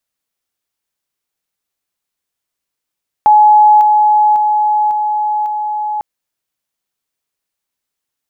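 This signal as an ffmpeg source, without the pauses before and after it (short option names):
-f lavfi -i "aevalsrc='pow(10,(-3.5-3*floor(t/0.55))/20)*sin(2*PI*846*t)':d=2.75:s=44100"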